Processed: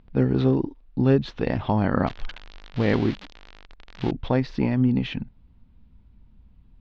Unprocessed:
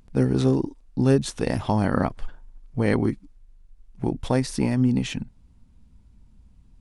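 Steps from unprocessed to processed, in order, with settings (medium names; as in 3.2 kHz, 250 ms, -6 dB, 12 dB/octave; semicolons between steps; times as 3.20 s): 2.07–4.11 s: zero-crossing glitches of -14.5 dBFS; inverse Chebyshev low-pass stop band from 8.9 kHz, stop band 50 dB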